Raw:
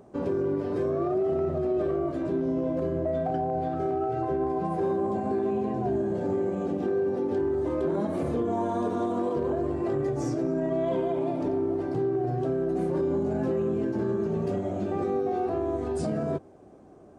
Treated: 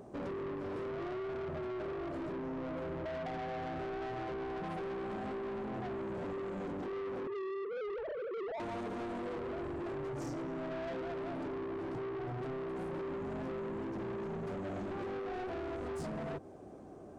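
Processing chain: 7.27–8.6 sine-wave speech; compressor 5:1, threshold -29 dBFS, peak gain reduction 9 dB; soft clip -38.5 dBFS, distortion -8 dB; gain +1 dB

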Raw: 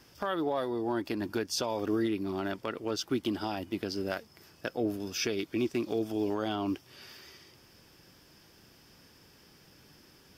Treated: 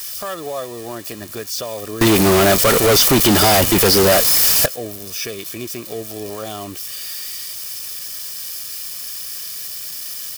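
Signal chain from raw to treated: switching spikes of -26 dBFS; comb 1.7 ms, depth 55%; 2.01–4.66 fuzz box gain 43 dB, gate -51 dBFS; gain +3 dB

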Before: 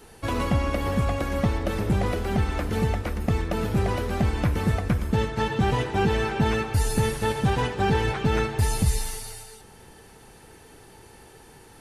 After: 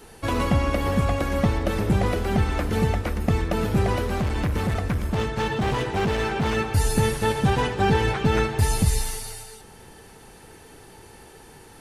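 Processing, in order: 4.04–6.57 hard clip -22.5 dBFS, distortion -13 dB; notches 60/120 Hz; gain +2.5 dB

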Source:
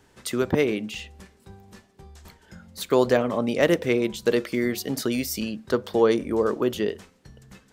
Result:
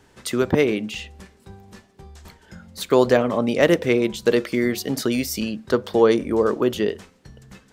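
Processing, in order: high shelf 11000 Hz -4.5 dB; gain +3.5 dB

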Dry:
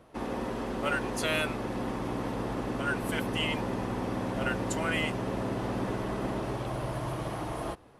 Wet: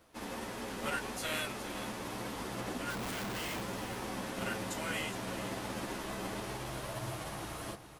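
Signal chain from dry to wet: spectral whitening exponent 0.6; chorus voices 4, 1.4 Hz, delay 12 ms, depth 3 ms; 2.9–3.62 Schmitt trigger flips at -39 dBFS; on a send: echo 0.414 s -11.5 dB; on the sum: gain -4.5 dB

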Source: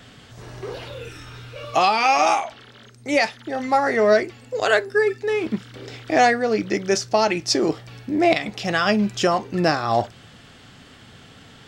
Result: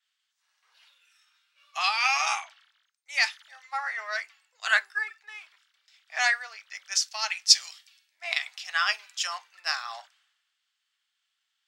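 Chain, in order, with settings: Bessel high-pass 1600 Hz, order 6; three-band expander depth 100%; gain -3 dB

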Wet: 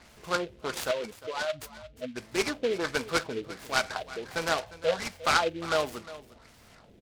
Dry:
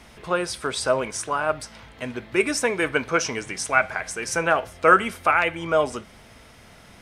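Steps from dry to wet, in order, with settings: 0.91–2.16 spectral contrast raised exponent 2.5; 4.63–5.24 fixed phaser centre 1300 Hz, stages 6; LFO low-pass sine 1.4 Hz 400–6200 Hz; notch 5700 Hz, Q 10; echo 0.354 s -16.5 dB; noise-modulated delay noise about 2500 Hz, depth 0.067 ms; gain -8 dB

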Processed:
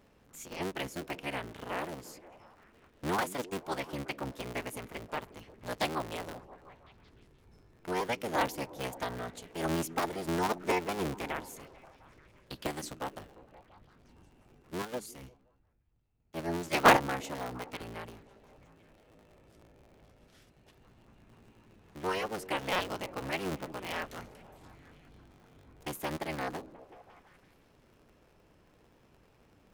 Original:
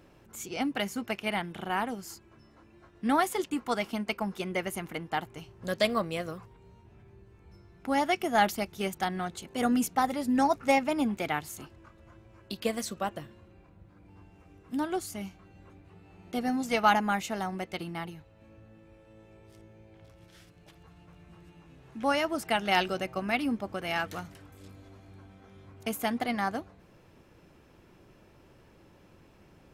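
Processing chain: cycle switcher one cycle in 3, inverted; delay with a stepping band-pass 0.176 s, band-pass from 240 Hz, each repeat 0.7 oct, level -11 dB; 14.82–16.97 three-band expander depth 100%; gain -6 dB

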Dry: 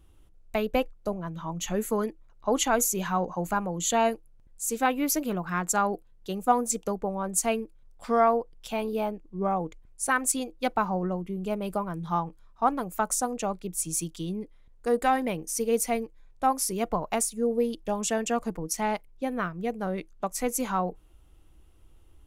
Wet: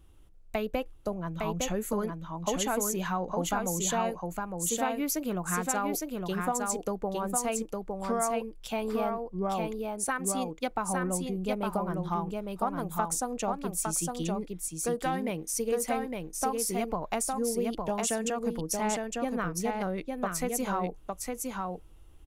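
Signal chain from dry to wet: compressor, threshold -27 dBFS, peak gain reduction 11 dB; on a send: echo 0.859 s -3.5 dB

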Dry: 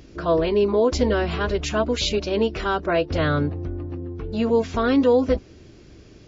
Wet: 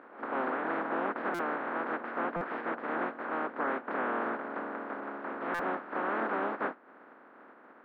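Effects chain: spectral contrast lowered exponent 0.12; in parallel at -10 dB: bit-crush 4-bit; on the sum: compressor 2:1, threshold -24 dBFS, peak gain reduction 7.5 dB; soft clip -19.5 dBFS, distortion -14 dB; elliptic band-pass 300–1900 Hz, stop band 60 dB; on a send: reverse echo 0.16 s -20 dB; on the sum: varispeed -20%; stuck buffer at 1.34/2.36/5.54, samples 256, times 8

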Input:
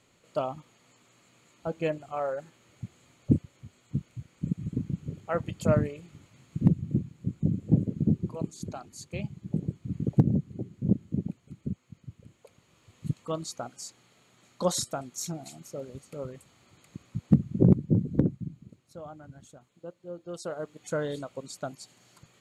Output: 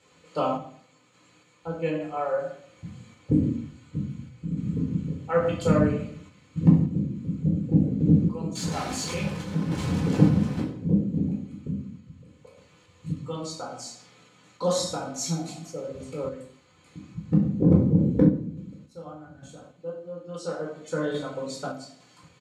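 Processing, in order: 8.55–10.6 zero-crossing step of -31.5 dBFS; LPF 8200 Hz 12 dB/oct; reverb RT60 0.60 s, pre-delay 12 ms, DRR -3 dB; random-step tremolo; HPF 63 Hz; comb 4 ms, depth 48%

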